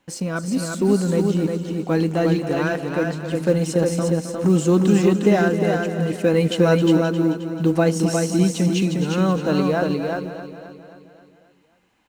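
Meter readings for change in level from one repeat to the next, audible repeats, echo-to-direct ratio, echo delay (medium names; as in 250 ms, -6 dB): no regular repeats, 10, -2.5 dB, 265 ms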